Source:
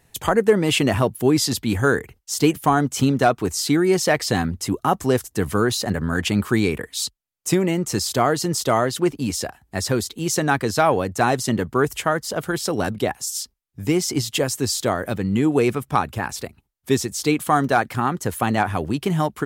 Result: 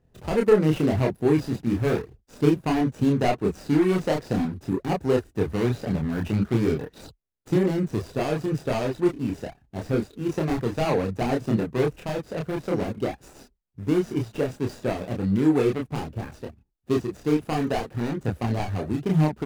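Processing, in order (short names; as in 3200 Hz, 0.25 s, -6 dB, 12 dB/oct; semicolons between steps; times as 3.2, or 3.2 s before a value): median filter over 41 samples; chorus voices 4, 0.54 Hz, delay 29 ms, depth 3.8 ms; gain +1.5 dB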